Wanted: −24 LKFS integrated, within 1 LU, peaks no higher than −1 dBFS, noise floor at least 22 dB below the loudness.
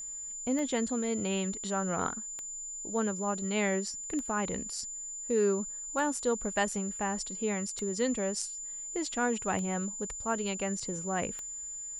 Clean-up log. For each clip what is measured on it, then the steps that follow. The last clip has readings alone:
number of clicks 7; interfering tone 7,100 Hz; level of the tone −38 dBFS; integrated loudness −32.5 LKFS; sample peak −14.5 dBFS; target loudness −24.0 LKFS
→ click removal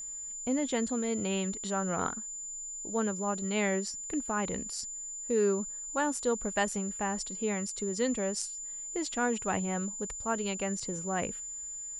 number of clicks 0; interfering tone 7,100 Hz; level of the tone −38 dBFS
→ notch filter 7,100 Hz, Q 30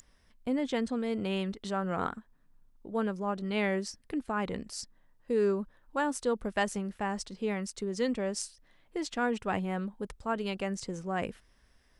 interfering tone none found; integrated loudness −33.5 LKFS; sample peak −15.0 dBFS; target loudness −24.0 LKFS
→ level +9.5 dB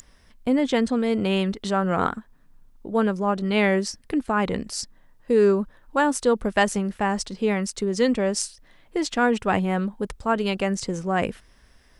integrated loudness −24.0 LKFS; sample peak −5.0 dBFS; background noise floor −56 dBFS

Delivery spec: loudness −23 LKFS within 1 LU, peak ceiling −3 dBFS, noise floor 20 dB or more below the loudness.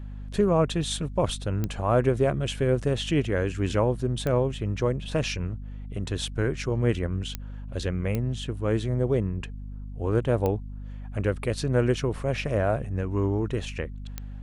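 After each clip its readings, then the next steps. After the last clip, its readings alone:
number of clicks 6; mains hum 50 Hz; hum harmonics up to 250 Hz; level of the hum −34 dBFS; integrated loudness −27.0 LKFS; sample peak −9.0 dBFS; target loudness −23.0 LKFS
→ click removal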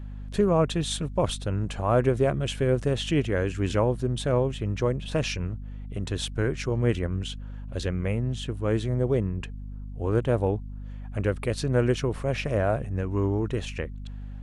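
number of clicks 0; mains hum 50 Hz; hum harmonics up to 250 Hz; level of the hum −34 dBFS
→ hum removal 50 Hz, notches 5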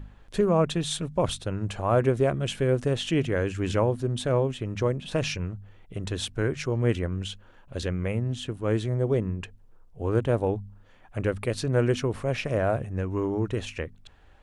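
mains hum none found; integrated loudness −27.5 LKFS; sample peak −10.0 dBFS; target loudness −23.0 LKFS
→ level +4.5 dB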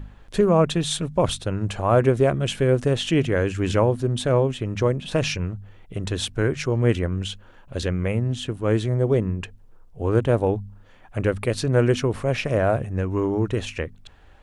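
integrated loudness −23.0 LKFS; sample peak −5.5 dBFS; background noise floor −49 dBFS

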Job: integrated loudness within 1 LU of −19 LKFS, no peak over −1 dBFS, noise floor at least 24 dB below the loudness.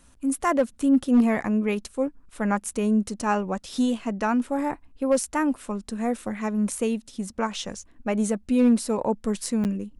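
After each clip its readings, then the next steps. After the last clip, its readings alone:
share of clipped samples 0.2%; peaks flattened at −12.5 dBFS; number of dropouts 1; longest dropout 9.1 ms; integrated loudness −25.5 LKFS; sample peak −12.5 dBFS; target loudness −19.0 LKFS
→ clipped peaks rebuilt −12.5 dBFS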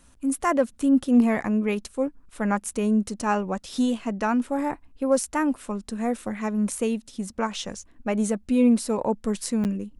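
share of clipped samples 0.0%; number of dropouts 1; longest dropout 9.1 ms
→ repair the gap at 0:09.64, 9.1 ms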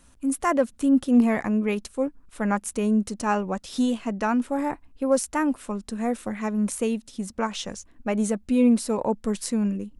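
number of dropouts 0; integrated loudness −25.0 LKFS; sample peak −9.0 dBFS; target loudness −19.0 LKFS
→ level +6 dB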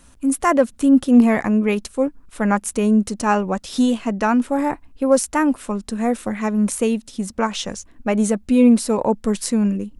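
integrated loudness −19.0 LKFS; sample peak −3.0 dBFS; background noise floor −50 dBFS

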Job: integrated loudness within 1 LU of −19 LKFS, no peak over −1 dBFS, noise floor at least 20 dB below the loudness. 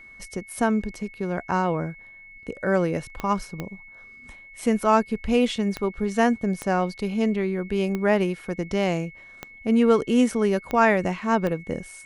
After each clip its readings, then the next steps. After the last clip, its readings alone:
number of clicks 8; interfering tone 2,200 Hz; level of the tone −44 dBFS; integrated loudness −24.0 LKFS; sample peak −6.5 dBFS; target loudness −19.0 LKFS
→ click removal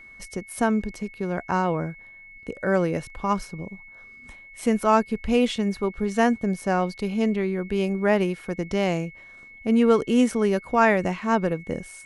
number of clicks 0; interfering tone 2,200 Hz; level of the tone −44 dBFS
→ notch filter 2,200 Hz, Q 30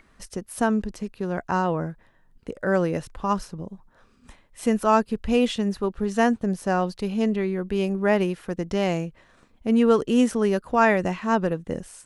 interfering tone none found; integrated loudness −24.0 LKFS; sample peak −6.5 dBFS; target loudness −19.0 LKFS
→ level +5 dB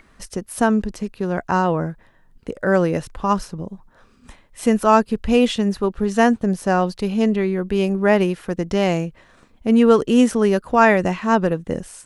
integrated loudness −19.0 LKFS; sample peak −1.5 dBFS; background noise floor −54 dBFS

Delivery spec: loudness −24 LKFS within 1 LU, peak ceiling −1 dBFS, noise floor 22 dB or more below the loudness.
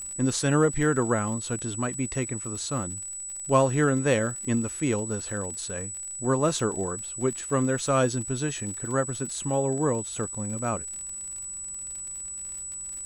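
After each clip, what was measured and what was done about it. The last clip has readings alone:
crackle rate 55 per second; interfering tone 7,900 Hz; level of the tone −34 dBFS; integrated loudness −27.5 LKFS; sample peak −9.0 dBFS; target loudness −24.0 LKFS
→ click removal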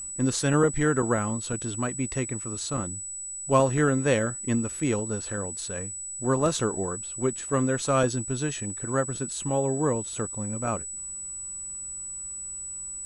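crackle rate 0.077 per second; interfering tone 7,900 Hz; level of the tone −34 dBFS
→ notch filter 7,900 Hz, Q 30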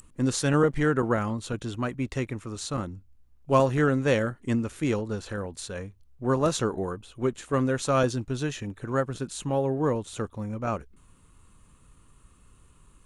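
interfering tone none found; integrated loudness −27.5 LKFS; sample peak −9.0 dBFS; target loudness −24.0 LKFS
→ level +3.5 dB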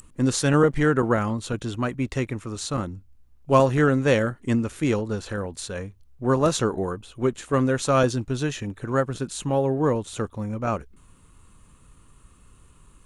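integrated loudness −24.0 LKFS; sample peak −5.5 dBFS; background noise floor −55 dBFS

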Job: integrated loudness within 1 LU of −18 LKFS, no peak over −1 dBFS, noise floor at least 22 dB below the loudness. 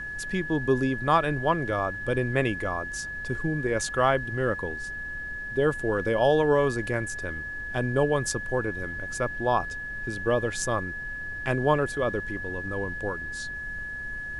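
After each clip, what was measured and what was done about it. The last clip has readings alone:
interfering tone 1,700 Hz; level of the tone −33 dBFS; background noise floor −36 dBFS; target noise floor −50 dBFS; integrated loudness −27.5 LKFS; sample peak −8.5 dBFS; target loudness −18.0 LKFS
→ notch filter 1,700 Hz, Q 30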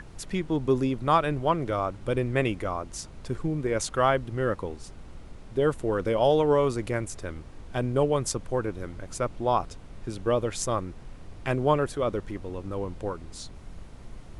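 interfering tone none found; background noise floor −45 dBFS; target noise floor −50 dBFS
→ noise reduction from a noise print 6 dB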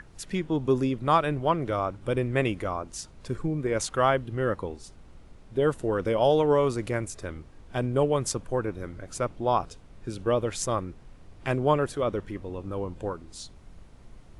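background noise floor −50 dBFS; integrated loudness −27.5 LKFS; sample peak −9.0 dBFS; target loudness −18.0 LKFS
→ level +9.5 dB
brickwall limiter −1 dBFS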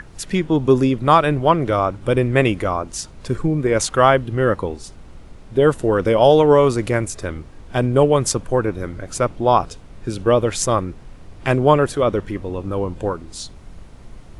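integrated loudness −18.0 LKFS; sample peak −1.0 dBFS; background noise floor −41 dBFS

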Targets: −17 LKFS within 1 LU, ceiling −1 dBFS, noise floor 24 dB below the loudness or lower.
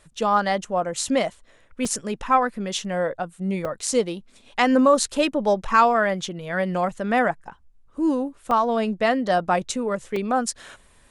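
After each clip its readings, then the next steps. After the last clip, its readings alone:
number of dropouts 4; longest dropout 3.4 ms; integrated loudness −23.0 LKFS; sample peak −3.5 dBFS; target loudness −17.0 LKFS
→ repair the gap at 0:01.85/0:03.65/0:08.51/0:10.16, 3.4 ms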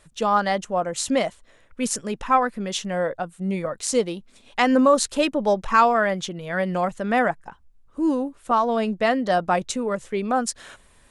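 number of dropouts 0; integrated loudness −23.0 LKFS; sample peak −3.5 dBFS; target loudness −17.0 LKFS
→ level +6 dB
brickwall limiter −1 dBFS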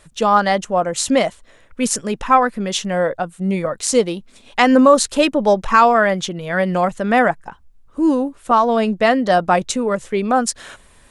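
integrated loudness −17.0 LKFS; sample peak −1.0 dBFS; background noise floor −50 dBFS

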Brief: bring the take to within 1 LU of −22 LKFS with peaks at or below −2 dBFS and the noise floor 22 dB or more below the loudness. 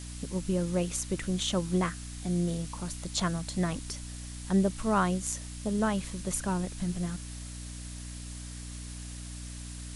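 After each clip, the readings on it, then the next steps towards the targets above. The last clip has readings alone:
mains hum 60 Hz; hum harmonics up to 300 Hz; level of the hum −40 dBFS; background noise floor −41 dBFS; target noise floor −55 dBFS; integrated loudness −32.5 LKFS; sample peak −14.0 dBFS; target loudness −22.0 LKFS
→ hum removal 60 Hz, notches 5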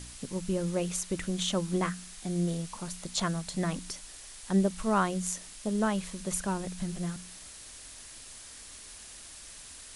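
mains hum none found; background noise floor −48 dBFS; target noise floor −54 dBFS
→ noise reduction from a noise print 6 dB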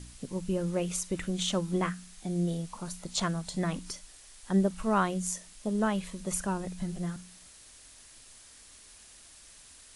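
background noise floor −54 dBFS; integrated loudness −32.0 LKFS; sample peak −14.0 dBFS; target loudness −22.0 LKFS
→ level +10 dB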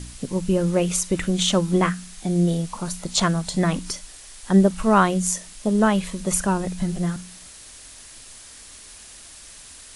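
integrated loudness −22.0 LKFS; sample peak −4.0 dBFS; background noise floor −44 dBFS

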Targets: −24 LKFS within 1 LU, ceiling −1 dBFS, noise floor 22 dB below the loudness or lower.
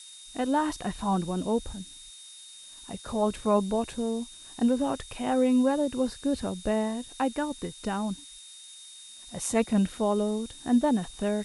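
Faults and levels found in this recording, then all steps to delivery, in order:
interfering tone 3,700 Hz; level of the tone −48 dBFS; background noise floor −48 dBFS; target noise floor −50 dBFS; integrated loudness −28.0 LKFS; sample peak −10.5 dBFS; target loudness −24.0 LKFS
→ notch filter 3,700 Hz, Q 30
broadband denoise 6 dB, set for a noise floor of −48 dBFS
level +4 dB

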